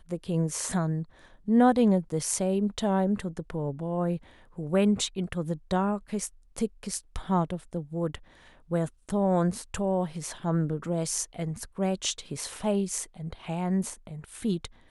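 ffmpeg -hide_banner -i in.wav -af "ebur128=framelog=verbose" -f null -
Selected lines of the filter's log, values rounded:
Integrated loudness:
  I:         -28.9 LUFS
  Threshold: -39.2 LUFS
Loudness range:
  LRA:         5.2 LU
  Threshold: -49.3 LUFS
  LRA low:   -31.6 LUFS
  LRA high:  -26.4 LUFS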